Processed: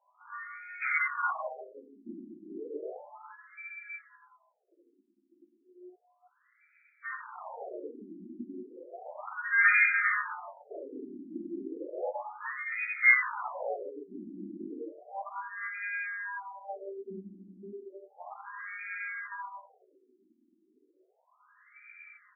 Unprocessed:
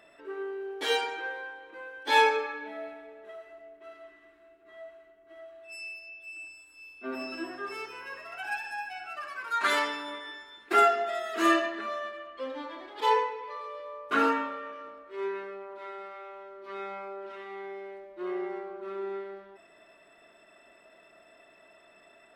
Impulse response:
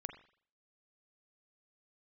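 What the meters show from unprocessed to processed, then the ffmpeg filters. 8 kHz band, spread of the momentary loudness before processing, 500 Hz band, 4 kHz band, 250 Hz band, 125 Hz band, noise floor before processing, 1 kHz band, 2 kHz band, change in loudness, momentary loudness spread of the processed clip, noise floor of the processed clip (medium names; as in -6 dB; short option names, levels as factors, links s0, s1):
under -30 dB, 22 LU, -9.0 dB, under -40 dB, -6.5 dB, no reading, -59 dBFS, -9.0 dB, +4.5 dB, -0.5 dB, 23 LU, -72 dBFS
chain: -filter_complex "[0:a]equalizer=f=2300:t=o:w=2.1:g=-14,lowpass=f=2600:t=q:w=0.5098,lowpass=f=2600:t=q:w=0.6013,lowpass=f=2600:t=q:w=0.9,lowpass=f=2600:t=q:w=2.563,afreqshift=-3000,flanger=delay=7.7:depth=2.1:regen=-17:speed=0.8:shape=sinusoidal,asplit=2[s0][s1];[s1]adelay=16,volume=0.631[s2];[s0][s2]amix=inputs=2:normalize=0,aecho=1:1:54|62|281|397:0.398|0.133|0.211|0.501,asplit=2[s3][s4];[1:a]atrim=start_sample=2205[s5];[s4][s5]afir=irnorm=-1:irlink=0,volume=1.5[s6];[s3][s6]amix=inputs=2:normalize=0,aeval=exprs='0.0891*(cos(1*acos(clip(val(0)/0.0891,-1,1)))-cos(1*PI/2))+0.0316*(cos(8*acos(clip(val(0)/0.0891,-1,1)))-cos(8*PI/2))':c=same,afftfilt=real='re*between(b*sr/1024,250*pow(1800/250,0.5+0.5*sin(2*PI*0.33*pts/sr))/1.41,250*pow(1800/250,0.5+0.5*sin(2*PI*0.33*pts/sr))*1.41)':imag='im*between(b*sr/1024,250*pow(1800/250,0.5+0.5*sin(2*PI*0.33*pts/sr))/1.41,250*pow(1800/250,0.5+0.5*sin(2*PI*0.33*pts/sr))*1.41)':win_size=1024:overlap=0.75,volume=2.37"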